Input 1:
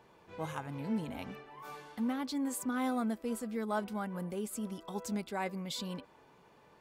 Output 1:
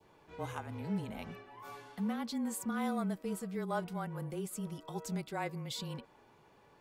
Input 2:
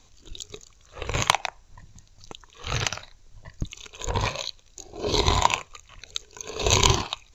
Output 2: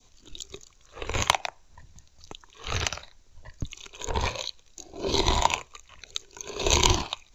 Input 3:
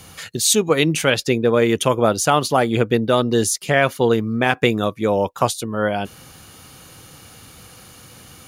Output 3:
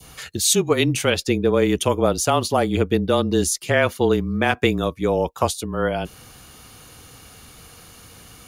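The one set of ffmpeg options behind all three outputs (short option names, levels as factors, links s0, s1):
-af "adynamicequalizer=threshold=0.02:dfrequency=1600:dqfactor=1.1:tfrequency=1600:tqfactor=1.1:attack=5:release=100:ratio=0.375:range=2:mode=cutabove:tftype=bell,afreqshift=-26,volume=0.841"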